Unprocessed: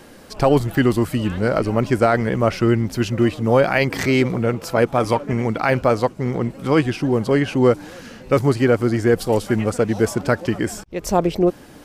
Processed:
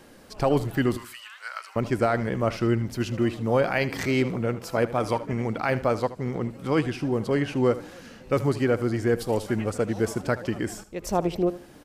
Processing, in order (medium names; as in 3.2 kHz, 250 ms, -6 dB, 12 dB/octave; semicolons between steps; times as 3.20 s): 0.97–1.76 s: high-pass 1.2 kHz 24 dB/octave; on a send: feedback delay 77 ms, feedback 26%, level -15.5 dB; on the sum: trim -7 dB